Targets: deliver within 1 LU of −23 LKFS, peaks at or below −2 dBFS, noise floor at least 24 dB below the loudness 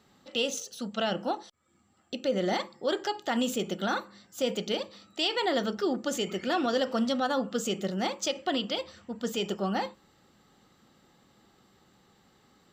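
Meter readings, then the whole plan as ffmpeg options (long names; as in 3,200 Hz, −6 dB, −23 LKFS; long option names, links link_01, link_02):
integrated loudness −30.5 LKFS; sample peak −16.0 dBFS; target loudness −23.0 LKFS
→ -af "volume=7.5dB"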